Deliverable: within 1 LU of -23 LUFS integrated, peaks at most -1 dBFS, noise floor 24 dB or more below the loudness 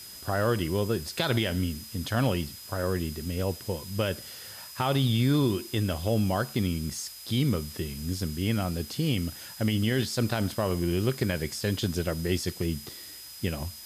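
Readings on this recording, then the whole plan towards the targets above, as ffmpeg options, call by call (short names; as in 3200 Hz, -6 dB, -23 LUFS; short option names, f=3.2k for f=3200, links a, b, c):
steady tone 5000 Hz; tone level -46 dBFS; noise floor -44 dBFS; noise floor target -53 dBFS; loudness -29.0 LUFS; peak -13.5 dBFS; loudness target -23.0 LUFS
-> -af "bandreject=f=5k:w=30"
-af "afftdn=nr=9:nf=-44"
-af "volume=6dB"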